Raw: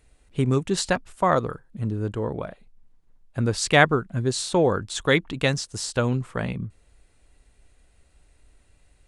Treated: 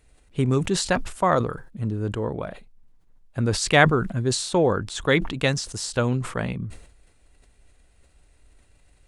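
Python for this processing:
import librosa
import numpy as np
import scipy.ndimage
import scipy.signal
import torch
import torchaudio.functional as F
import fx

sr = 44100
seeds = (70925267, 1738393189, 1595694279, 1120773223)

y = fx.high_shelf(x, sr, hz=3700.0, db=-3.5, at=(4.58, 5.25))
y = fx.sustainer(y, sr, db_per_s=90.0)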